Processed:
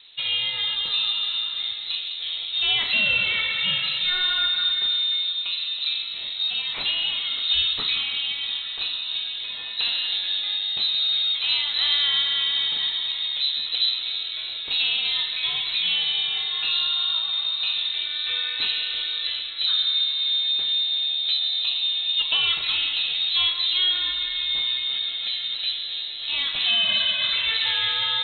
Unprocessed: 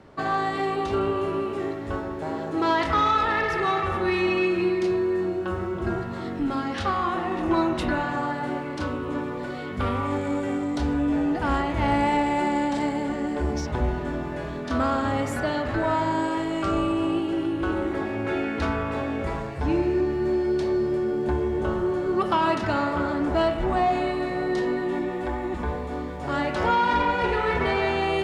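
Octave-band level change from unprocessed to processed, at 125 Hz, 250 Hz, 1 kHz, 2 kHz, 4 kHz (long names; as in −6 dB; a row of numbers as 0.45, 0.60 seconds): below −20 dB, below −25 dB, −16.5 dB, +2.0 dB, +21.5 dB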